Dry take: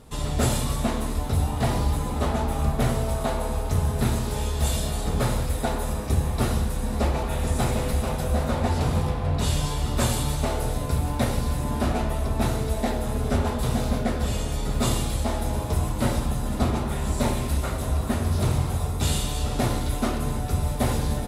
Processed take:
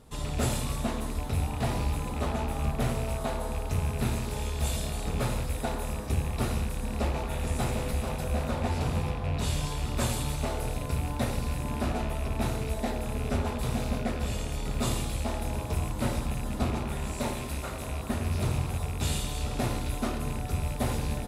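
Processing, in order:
loose part that buzzes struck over −25 dBFS, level −27 dBFS
0:17.07–0:18.10: low-shelf EQ 170 Hz −6 dB
level −5.5 dB

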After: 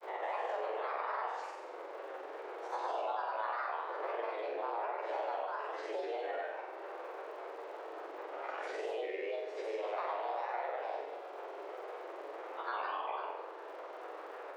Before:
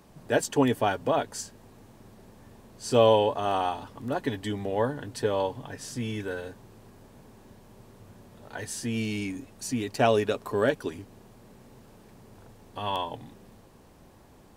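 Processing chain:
spectrum smeared in time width 211 ms
downward compressor 4 to 1, threshold −36 dBFS, peak gain reduction 15.5 dB
granular cloud, pitch spread up and down by 7 semitones
band-pass filter 240–2,100 Hz
frequency shifter +220 Hz
flutter between parallel walls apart 7.7 metres, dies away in 0.69 s
surface crackle 130 per second −68 dBFS
multiband upward and downward compressor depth 70%
level +1.5 dB

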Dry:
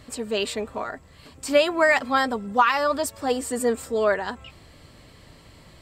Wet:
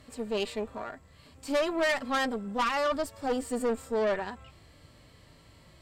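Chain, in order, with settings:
harmonic and percussive parts rebalanced percussive −11 dB
tube saturation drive 23 dB, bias 0.65

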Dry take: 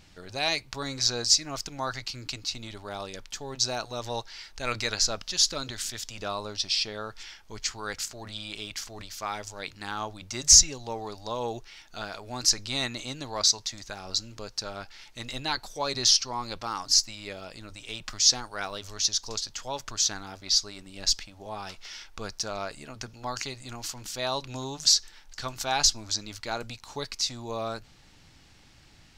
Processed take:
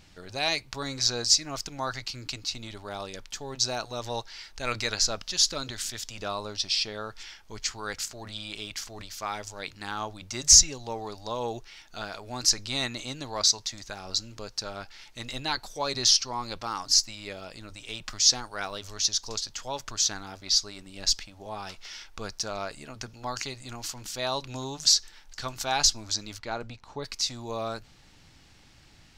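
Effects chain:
0:26.38–0:27.03: low-pass filter 2,700 Hz → 1,100 Hz 6 dB per octave

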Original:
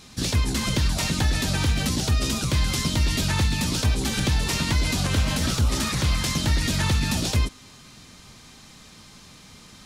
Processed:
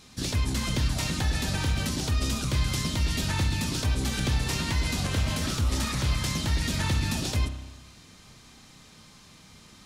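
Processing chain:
spring reverb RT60 1.1 s, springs 31 ms, chirp 75 ms, DRR 7.5 dB
level −5 dB

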